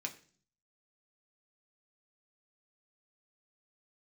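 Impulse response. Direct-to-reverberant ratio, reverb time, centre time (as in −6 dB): 1.5 dB, 0.45 s, 9 ms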